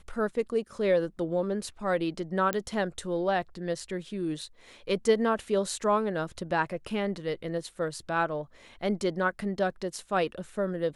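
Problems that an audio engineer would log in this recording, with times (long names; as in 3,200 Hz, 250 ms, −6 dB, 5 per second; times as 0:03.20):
0:02.53: click −14 dBFS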